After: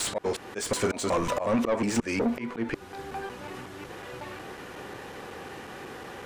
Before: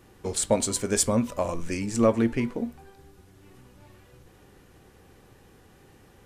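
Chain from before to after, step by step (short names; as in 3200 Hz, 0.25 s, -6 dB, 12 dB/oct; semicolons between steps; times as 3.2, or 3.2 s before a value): slices in reverse order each 0.183 s, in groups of 3; auto swell 0.412 s; overdrive pedal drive 27 dB, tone 2200 Hz, clips at -15 dBFS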